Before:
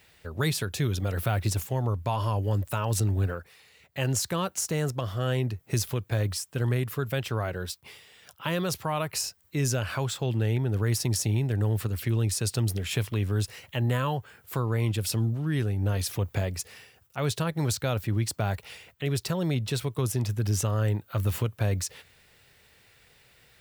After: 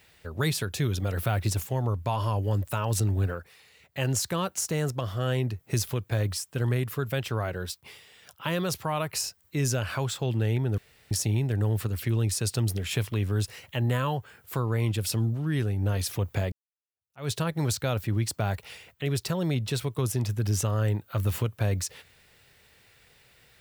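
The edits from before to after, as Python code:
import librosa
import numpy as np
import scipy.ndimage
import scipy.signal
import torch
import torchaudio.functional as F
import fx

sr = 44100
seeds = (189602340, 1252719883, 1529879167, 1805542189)

y = fx.edit(x, sr, fx.room_tone_fill(start_s=10.78, length_s=0.33),
    fx.fade_in_span(start_s=16.52, length_s=0.78, curve='exp'), tone=tone)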